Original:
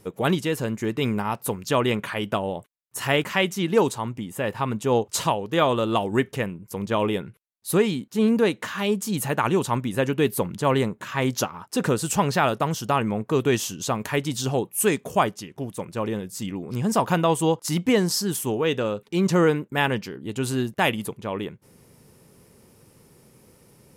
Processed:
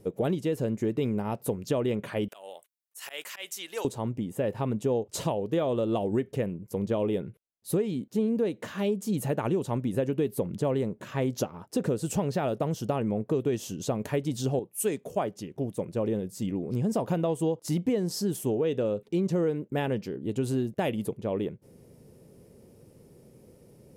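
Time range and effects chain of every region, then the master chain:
0:02.28–0:03.85: high-pass filter 1,300 Hz + high-shelf EQ 4,800 Hz +10 dB + volume swells 143 ms
0:14.59–0:15.36: low-shelf EQ 420 Hz −6 dB + multiband upward and downward expander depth 40%
whole clip: low shelf with overshoot 780 Hz +8.5 dB, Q 1.5; downward compressor, threshold −15 dBFS; level −8.5 dB

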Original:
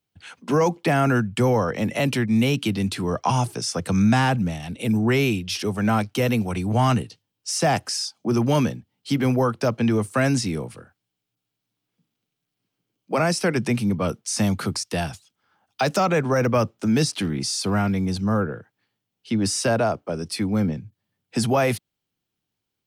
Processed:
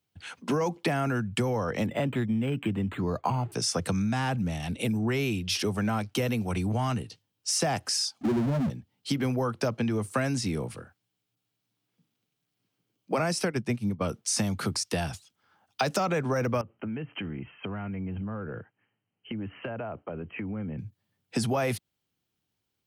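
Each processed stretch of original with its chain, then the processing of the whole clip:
0:01.86–0:03.52: high-frequency loss of the air 180 metres + linearly interpolated sample-rate reduction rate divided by 8×
0:08.21–0:08.70: expanding power law on the bin magnitudes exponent 3.7 + power curve on the samples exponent 0.5
0:13.45–0:14.01: low-shelf EQ 170 Hz +4.5 dB + expander for the loud parts 2.5 to 1, over −29 dBFS
0:16.61–0:20.79: linear-phase brick-wall low-pass 3,200 Hz + downward compressor 10 to 1, threshold −31 dBFS
whole clip: parametric band 69 Hz +7 dB 1.9 octaves; downward compressor, threshold −23 dBFS; low-shelf EQ 130 Hz −6.5 dB

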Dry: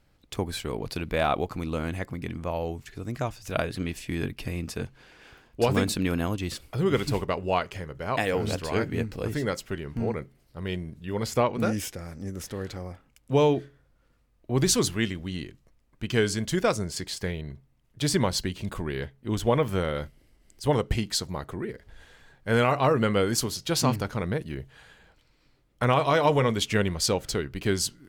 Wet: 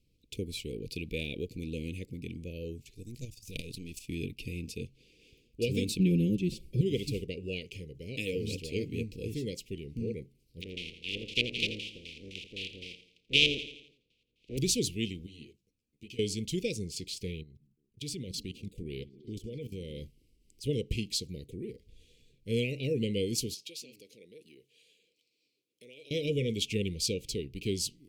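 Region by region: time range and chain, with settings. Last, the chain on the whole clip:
0:02.92–0:04.09: gain on one half-wave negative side −7 dB + bass and treble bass +4 dB, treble +9 dB + output level in coarse steps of 9 dB
0:05.99–0:06.81: tilt shelving filter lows +7.5 dB, about 680 Hz + comb filter 5.5 ms, depth 99%
0:10.60–0:14.57: compressing power law on the bin magnitudes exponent 0.23 + auto-filter low-pass square 3.9 Hz 930–3,100 Hz + repeating echo 84 ms, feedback 50%, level −12 dB
0:15.26–0:16.19: high-pass filter 150 Hz 6 dB per octave + downward compressor, threshold −33 dBFS + string-ensemble chorus
0:17.43–0:20.01: output level in coarse steps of 16 dB + echo through a band-pass that steps 170 ms, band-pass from 200 Hz, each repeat 0.7 octaves, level −11 dB
0:23.54–0:26.11: downward compressor 3 to 1, threshold −36 dBFS + high-pass filter 460 Hz
whole clip: Chebyshev band-stop filter 480–2,400 Hz, order 4; dynamic equaliser 2,700 Hz, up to +4 dB, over −48 dBFS, Q 1.2; level −6 dB

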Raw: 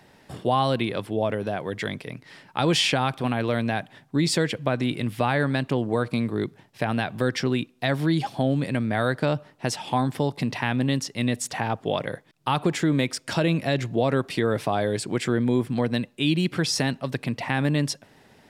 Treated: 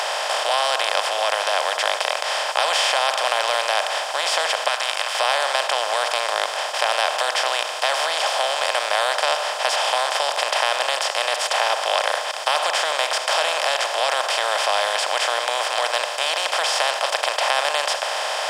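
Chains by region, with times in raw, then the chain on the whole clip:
0:04.68–0:05.15: high-pass filter 1,200 Hz 24 dB per octave + expander for the loud parts, over −42 dBFS
whole clip: compressor on every frequency bin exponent 0.2; elliptic high-pass filter 580 Hz, stop band 70 dB; level −3 dB

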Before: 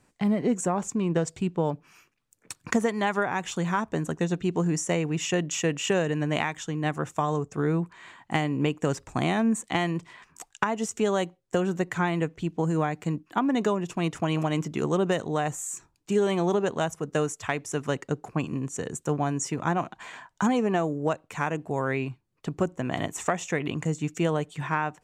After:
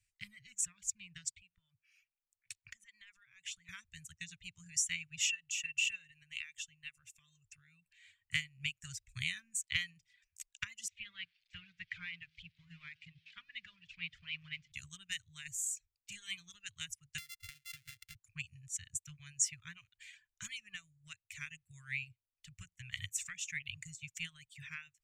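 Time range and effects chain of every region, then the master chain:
0:01.31–0:03.69: mid-hump overdrive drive 8 dB, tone 1,900 Hz, clips at −7 dBFS + dynamic equaliser 8,400 Hz, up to +5 dB, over −53 dBFS, Q 0.96 + downward compressor 5 to 1, threshold −34 dBFS
0:05.29–0:07.98: parametric band 170 Hz −5.5 dB 2.9 octaves + downward compressor 2 to 1, threshold −37 dBFS + hollow resonant body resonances 500/2,700 Hz, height 16 dB
0:10.88–0:14.72: spike at every zero crossing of −26 dBFS + low-pass filter 3,100 Hz 24 dB per octave + hum removal 53.32 Hz, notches 32
0:17.18–0:18.15: samples sorted by size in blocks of 64 samples + parametric band 1,600 Hz +4.5 dB 0.6 octaves + downward compressor 16 to 1, threshold −30 dBFS
whole clip: reverb reduction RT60 1 s; elliptic band-stop filter 100–2,200 Hz, stop band 50 dB; expander for the loud parts 1.5 to 1, over −56 dBFS; level +2 dB

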